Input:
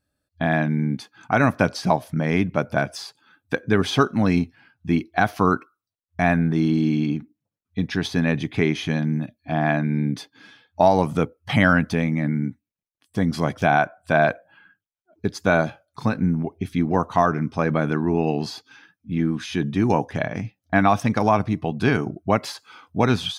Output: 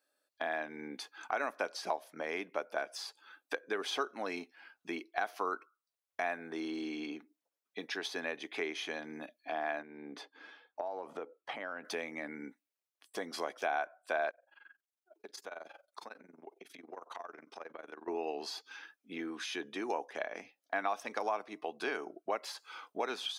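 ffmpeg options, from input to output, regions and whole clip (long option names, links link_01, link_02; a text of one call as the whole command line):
ffmpeg -i in.wav -filter_complex "[0:a]asettb=1/sr,asplit=3[link_01][link_02][link_03];[link_01]atrim=end=9.824[link_04];[link_02]atrim=start=9.82:end=11.85,asetpts=PTS-STARTPTS,afade=type=in:duration=0.004:curve=qsin,afade=type=out:start_time=2.026:duration=0.004:curve=qsin,acompressor=threshold=-23dB:ratio=6:attack=3.2:release=140:knee=1:detection=peak,lowpass=frequency=1200:poles=1[link_05];[link_03]atrim=start=11.846[link_06];[link_04][link_05]acrossfade=duration=0.004:curve1=hsin:curve2=qsin[link_07];[link_07][link_06]acrossfade=duration=0.004:curve1=qsin:curve2=hsin,asettb=1/sr,asplit=3[link_08][link_09][link_10];[link_08]atrim=end=14.304[link_11];[link_09]atrim=start=14.3:end=18.08,asetpts=PTS-STARTPTS,afade=type=in:duration=0.004:curve=qsin,afade=type=out:start_time=3.776:duration=0.004:curve=qsin,tremolo=f=22:d=0.889,acompressor=threshold=-40dB:ratio=4:attack=3.2:release=140:knee=1:detection=peak[link_12];[link_10]atrim=start=18.076[link_13];[link_11][link_12]acrossfade=duration=0.004:curve1=hsin:curve2=qsin[link_14];[link_14][link_13]acrossfade=duration=0.004:curve1=qsin:curve2=hsin,highpass=frequency=390:width=0.5412,highpass=frequency=390:width=1.3066,acompressor=threshold=-43dB:ratio=2" out.wav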